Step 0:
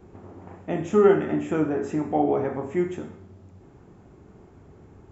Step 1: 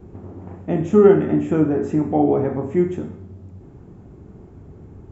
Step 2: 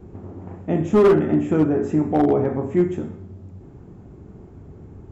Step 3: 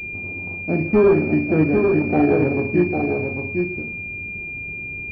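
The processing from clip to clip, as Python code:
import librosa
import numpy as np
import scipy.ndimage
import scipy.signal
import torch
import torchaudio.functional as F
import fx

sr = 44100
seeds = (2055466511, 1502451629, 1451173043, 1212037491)

y1 = fx.low_shelf(x, sr, hz=480.0, db=11.5)
y1 = y1 * 10.0 ** (-1.5 / 20.0)
y2 = np.clip(10.0 ** (10.0 / 20.0) * y1, -1.0, 1.0) / 10.0 ** (10.0 / 20.0)
y3 = y2 + 10.0 ** (-4.5 / 20.0) * np.pad(y2, (int(801 * sr / 1000.0), 0))[:len(y2)]
y3 = fx.pwm(y3, sr, carrier_hz=2400.0)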